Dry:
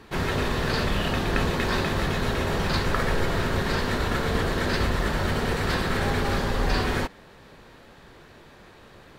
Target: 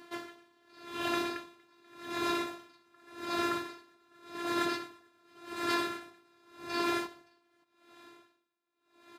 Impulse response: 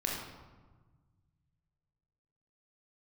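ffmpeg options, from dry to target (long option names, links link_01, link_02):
-filter_complex "[0:a]afftfilt=real='hypot(re,im)*cos(PI*b)':imag='0':win_size=512:overlap=0.75,highpass=frequency=130:width=0.5412,highpass=frequency=130:width=1.3066,asplit=2[link_01][link_02];[link_02]aecho=0:1:571:0.501[link_03];[link_01][link_03]amix=inputs=2:normalize=0,aeval=exprs='val(0)*pow(10,-36*(0.5-0.5*cos(2*PI*0.87*n/s))/20)':channel_layout=same"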